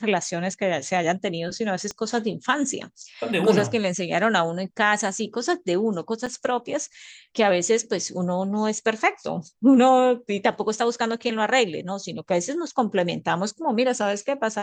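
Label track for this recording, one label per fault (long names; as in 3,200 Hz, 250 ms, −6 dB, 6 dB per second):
1.910000	1.910000	click −19 dBFS
6.260000	6.270000	drop-out 5.5 ms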